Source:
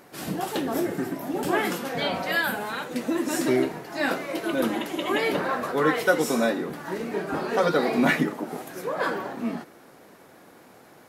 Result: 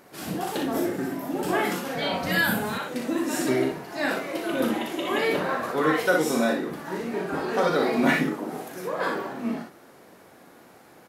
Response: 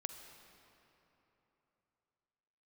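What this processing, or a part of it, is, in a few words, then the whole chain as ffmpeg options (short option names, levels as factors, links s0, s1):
slapback doubling: -filter_complex "[0:a]asplit=3[s0][s1][s2];[s1]adelay=38,volume=0.473[s3];[s2]adelay=60,volume=0.562[s4];[s0][s3][s4]amix=inputs=3:normalize=0,asettb=1/sr,asplit=3[s5][s6][s7];[s5]atrim=end=2.234[s8];[s6]atrim=start=2.23:end=2.78,asetpts=PTS-STARTPTS,afade=t=in:d=0.004:c=qsin,afade=t=out:st=0.546:d=0.004:c=qsin,bass=f=250:g=13,treble=f=4000:g=5[s9];[s7]atrim=start=2.776[s10];[s8][s9]acrossfade=d=0.004:c1=hsin:c2=qsin[s11];[s11][s10]acrossfade=d=0.004:c1=qsin:c2=hsin,volume=0.794"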